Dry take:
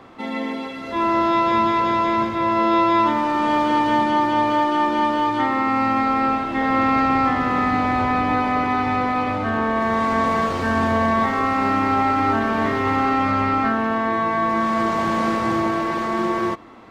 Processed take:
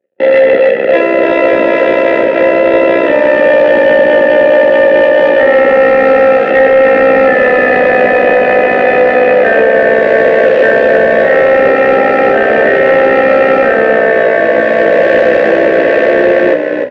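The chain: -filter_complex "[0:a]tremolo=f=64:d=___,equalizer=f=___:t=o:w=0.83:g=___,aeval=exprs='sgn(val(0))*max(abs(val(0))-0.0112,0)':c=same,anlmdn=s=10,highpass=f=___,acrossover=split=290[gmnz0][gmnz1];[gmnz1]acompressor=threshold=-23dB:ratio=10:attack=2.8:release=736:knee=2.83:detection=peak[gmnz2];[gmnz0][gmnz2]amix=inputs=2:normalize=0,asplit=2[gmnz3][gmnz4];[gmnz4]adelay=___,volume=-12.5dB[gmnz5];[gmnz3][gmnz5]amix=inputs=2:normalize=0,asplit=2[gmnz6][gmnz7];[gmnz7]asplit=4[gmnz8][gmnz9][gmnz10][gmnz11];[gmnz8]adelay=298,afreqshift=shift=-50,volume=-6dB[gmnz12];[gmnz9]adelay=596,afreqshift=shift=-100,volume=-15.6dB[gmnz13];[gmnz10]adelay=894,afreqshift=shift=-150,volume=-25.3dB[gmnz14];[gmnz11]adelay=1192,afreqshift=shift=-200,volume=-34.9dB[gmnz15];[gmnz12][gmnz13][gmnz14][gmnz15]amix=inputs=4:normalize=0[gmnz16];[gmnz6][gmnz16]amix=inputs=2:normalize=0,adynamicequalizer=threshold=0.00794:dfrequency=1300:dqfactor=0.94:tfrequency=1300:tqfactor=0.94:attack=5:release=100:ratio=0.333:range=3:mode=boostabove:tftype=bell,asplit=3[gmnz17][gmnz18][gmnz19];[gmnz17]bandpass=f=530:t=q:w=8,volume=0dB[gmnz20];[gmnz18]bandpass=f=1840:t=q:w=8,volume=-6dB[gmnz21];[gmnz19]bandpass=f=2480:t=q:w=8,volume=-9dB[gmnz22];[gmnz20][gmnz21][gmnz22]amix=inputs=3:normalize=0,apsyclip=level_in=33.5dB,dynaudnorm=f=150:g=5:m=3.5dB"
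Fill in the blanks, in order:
0.667, 510, 7, 190, 25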